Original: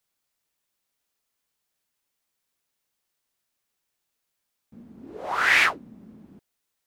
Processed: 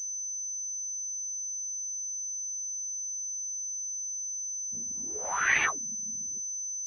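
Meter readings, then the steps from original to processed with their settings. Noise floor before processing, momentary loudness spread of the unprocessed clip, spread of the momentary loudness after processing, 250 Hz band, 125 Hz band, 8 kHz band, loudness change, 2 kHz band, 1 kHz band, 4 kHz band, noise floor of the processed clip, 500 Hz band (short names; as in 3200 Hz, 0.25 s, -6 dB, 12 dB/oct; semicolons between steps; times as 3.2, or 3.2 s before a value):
-80 dBFS, 15 LU, 7 LU, -7.0 dB, n/a, +20.0 dB, -10.5 dB, -6.0 dB, -6.0 dB, -11.5 dB, -36 dBFS, -6.5 dB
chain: chorus voices 6, 0.54 Hz, delay 13 ms, depth 1.4 ms; reverb removal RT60 1.6 s; pulse-width modulation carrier 6100 Hz; gain -1 dB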